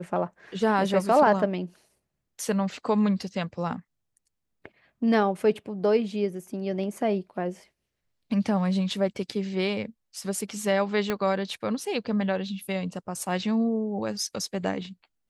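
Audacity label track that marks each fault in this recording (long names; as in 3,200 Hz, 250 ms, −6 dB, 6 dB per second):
11.100000	11.100000	click −13 dBFS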